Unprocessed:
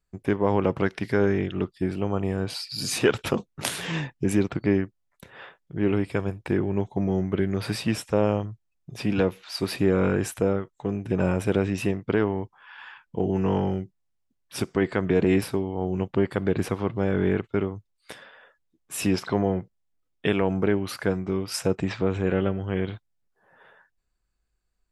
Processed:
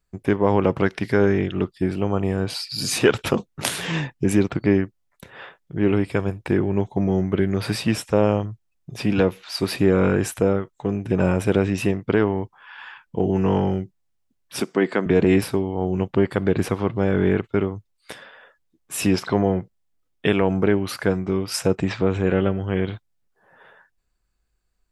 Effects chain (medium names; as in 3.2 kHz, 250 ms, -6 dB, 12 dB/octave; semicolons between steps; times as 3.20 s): 14.60–15.06 s: high-pass 180 Hz 24 dB/octave; trim +4 dB